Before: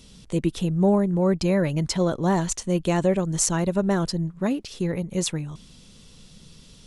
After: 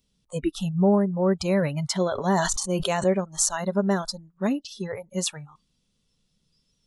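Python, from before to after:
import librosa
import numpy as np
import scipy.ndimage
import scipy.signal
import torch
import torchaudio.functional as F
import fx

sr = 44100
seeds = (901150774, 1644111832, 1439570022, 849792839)

y = fx.noise_reduce_blind(x, sr, reduce_db=23)
y = fx.sustainer(y, sr, db_per_s=33.0, at=(2.06, 3.04))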